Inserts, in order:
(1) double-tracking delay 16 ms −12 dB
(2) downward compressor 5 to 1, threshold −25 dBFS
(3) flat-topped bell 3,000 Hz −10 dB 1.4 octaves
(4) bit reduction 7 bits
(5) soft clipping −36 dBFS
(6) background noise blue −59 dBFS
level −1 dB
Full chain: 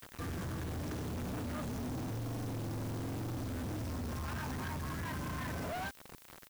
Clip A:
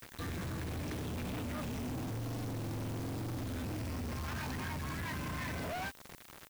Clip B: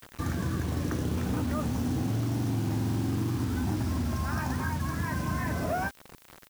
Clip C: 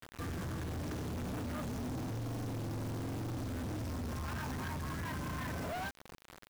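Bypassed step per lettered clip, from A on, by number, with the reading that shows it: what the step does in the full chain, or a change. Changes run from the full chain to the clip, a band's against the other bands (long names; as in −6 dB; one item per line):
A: 3, 4 kHz band +2.5 dB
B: 5, distortion level −7 dB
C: 6, change in crest factor −2.0 dB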